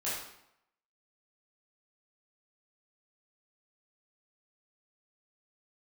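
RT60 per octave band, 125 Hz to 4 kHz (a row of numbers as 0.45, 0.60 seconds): 0.75, 0.75, 0.75, 0.80, 0.70, 0.60 seconds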